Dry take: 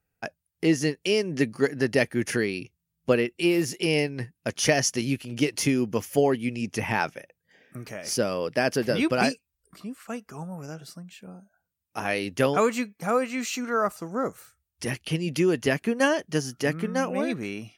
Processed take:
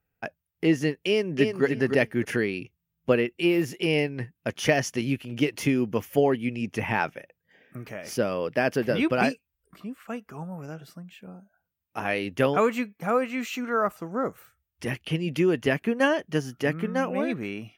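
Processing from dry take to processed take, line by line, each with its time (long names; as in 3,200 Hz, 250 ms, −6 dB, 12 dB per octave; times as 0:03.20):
0:01.08–0:01.64: delay throw 300 ms, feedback 15%, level −5 dB
whole clip: flat-topped bell 6,800 Hz −9 dB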